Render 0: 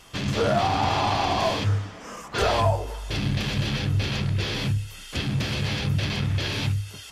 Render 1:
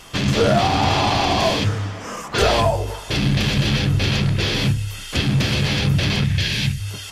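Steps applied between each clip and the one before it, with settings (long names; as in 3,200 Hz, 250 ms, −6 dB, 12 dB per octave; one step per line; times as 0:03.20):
dynamic equaliser 1,000 Hz, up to −5 dB, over −35 dBFS, Q 0.88
mains-hum notches 50/100 Hz
gain on a spectral selection 0:06.24–0:06.80, 230–1,500 Hz −9 dB
level +8 dB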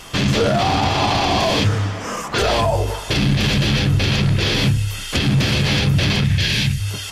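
brickwall limiter −13 dBFS, peak gain reduction 8.5 dB
level +4.5 dB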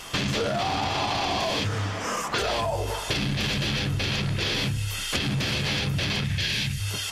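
low-shelf EQ 390 Hz −5.5 dB
downward compressor, threshold −22 dBFS, peak gain reduction 7 dB
level −1 dB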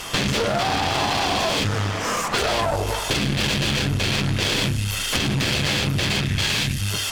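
asymmetric clip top −35 dBFS
level +7.5 dB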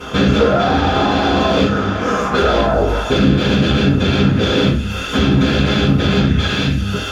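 convolution reverb, pre-delay 3 ms, DRR −8 dB
level −12 dB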